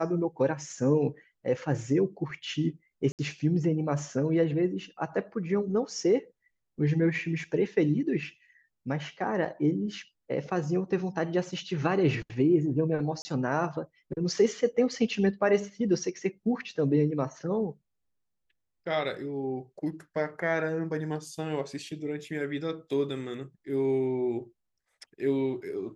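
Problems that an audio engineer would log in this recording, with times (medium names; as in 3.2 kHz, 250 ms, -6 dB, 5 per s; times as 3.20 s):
3.12–3.19 s: dropout 68 ms
13.22–13.25 s: dropout 30 ms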